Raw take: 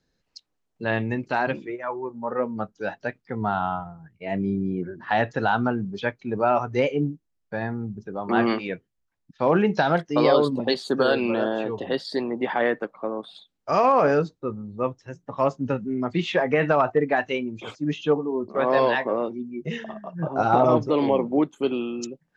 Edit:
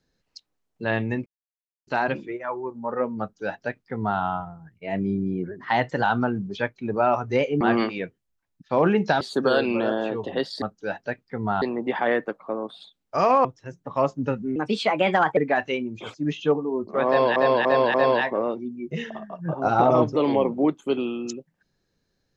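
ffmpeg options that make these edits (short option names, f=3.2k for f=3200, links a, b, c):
-filter_complex "[0:a]asplit=14[a][b][c][d][e][f][g][h][i][j][k][l][m][n];[a]atrim=end=1.26,asetpts=PTS-STARTPTS,afade=t=out:st=1.256:d=0.004:c=hsin,apad=pad_dur=0.61[o];[b]atrim=start=1.26:end=4.904,asetpts=PTS-STARTPTS,afade=t=in:d=0.004:c=hsin[p];[c]atrim=start=4.9:end=5.47,asetpts=PTS-STARTPTS,asetrate=47628,aresample=44100[q];[d]atrim=start=5.466:end=7.042[r];[e]atrim=start=8.298:end=9.902[s];[f]atrim=start=10.748:end=12.162[t];[g]atrim=start=2.588:end=3.592[u];[h]atrim=start=12.158:end=13.992[v];[i]atrim=start=14.868:end=15.984[w];[j]atrim=start=15.98:end=16.98,asetpts=PTS-STARTPTS,asetrate=54243,aresample=44100[x];[k]atrim=start=16.976:end=18.972[y];[l]atrim=start=18.678:end=18.972[z];[m]atrim=start=18.678:end=18.972[aa];[n]atrim=start=18.678[ab];[o][p]concat=n=2:v=0:a=1[ac];[ac][q]acrossfade=d=0.004:c1=hsin:c2=hsin[ad];[ad][r]acrossfade=d=0.004:c1=hsin:c2=hsin[ae];[ae][s]acrossfade=d=0.004:c1=hsin:c2=hsin[af];[af][t]acrossfade=d=0.004:c1=hsin:c2=hsin[ag];[ag][u]acrossfade=d=0.004:c1=hsin:c2=hsin[ah];[ah][v]acrossfade=d=0.004:c1=hsin:c2=hsin[ai];[ai][w]acrossfade=d=0.004:c1=hsin:c2=hsin[aj];[aj][x]acrossfade=d=0.004:c1=hsin:c2=hsin[ak];[ak][y]acrossfade=d=0.004:c1=hsin:c2=hsin[al];[al][z]acrossfade=d=0.004:c1=hsin:c2=hsin[am];[am][aa]acrossfade=d=0.004:c1=hsin:c2=hsin[an];[an][ab]acrossfade=d=0.004:c1=hsin:c2=hsin"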